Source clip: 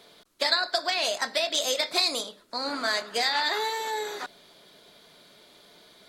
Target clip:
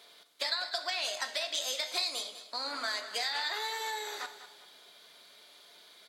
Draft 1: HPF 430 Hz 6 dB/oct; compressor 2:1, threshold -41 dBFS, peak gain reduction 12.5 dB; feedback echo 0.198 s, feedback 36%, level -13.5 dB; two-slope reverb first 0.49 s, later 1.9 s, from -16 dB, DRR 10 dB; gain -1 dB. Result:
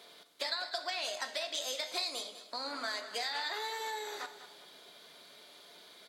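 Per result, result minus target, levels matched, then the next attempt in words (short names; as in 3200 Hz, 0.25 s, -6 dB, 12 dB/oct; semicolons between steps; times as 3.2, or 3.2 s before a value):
compressor: peak gain reduction +3.5 dB; 500 Hz band +3.5 dB
HPF 430 Hz 6 dB/oct; compressor 2:1, threshold -34 dBFS, peak gain reduction 9 dB; feedback echo 0.198 s, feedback 36%, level -13.5 dB; two-slope reverb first 0.49 s, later 1.9 s, from -16 dB, DRR 10 dB; gain -1 dB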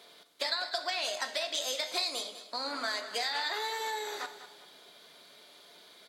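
500 Hz band +3.0 dB
HPF 1000 Hz 6 dB/oct; compressor 2:1, threshold -34 dBFS, peak gain reduction 8.5 dB; feedback echo 0.198 s, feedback 36%, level -13.5 dB; two-slope reverb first 0.49 s, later 1.9 s, from -16 dB, DRR 10 dB; gain -1 dB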